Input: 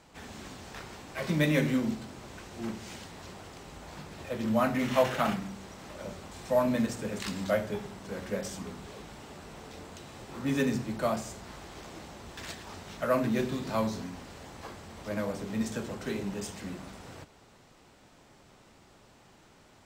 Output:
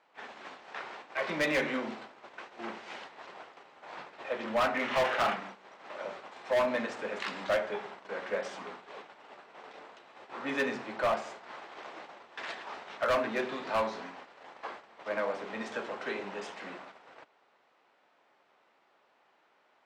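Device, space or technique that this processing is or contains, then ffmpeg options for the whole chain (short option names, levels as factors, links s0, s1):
walkie-talkie: -af "highpass=590,lowpass=2600,asoftclip=type=hard:threshold=0.0335,agate=range=0.282:threshold=0.00316:ratio=16:detection=peak,volume=2"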